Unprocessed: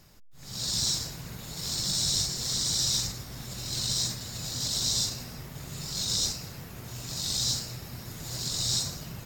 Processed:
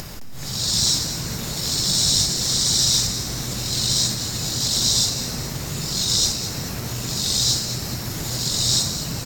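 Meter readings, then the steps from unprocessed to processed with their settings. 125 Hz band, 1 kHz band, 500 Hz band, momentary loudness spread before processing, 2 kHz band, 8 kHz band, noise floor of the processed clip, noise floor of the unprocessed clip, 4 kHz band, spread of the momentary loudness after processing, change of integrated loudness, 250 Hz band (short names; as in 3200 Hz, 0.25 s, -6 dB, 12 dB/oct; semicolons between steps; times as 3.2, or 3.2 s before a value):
+9.5 dB, +10.0 dB, +11.0 dB, 15 LU, +10.0 dB, +9.0 dB, -30 dBFS, -45 dBFS, +9.0 dB, 11 LU, +8.5 dB, +11.0 dB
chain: upward compressor, threshold -31 dBFS; on a send: frequency-shifting echo 0.214 s, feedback 57%, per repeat +92 Hz, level -11 dB; on the sum: gain +8.5 dB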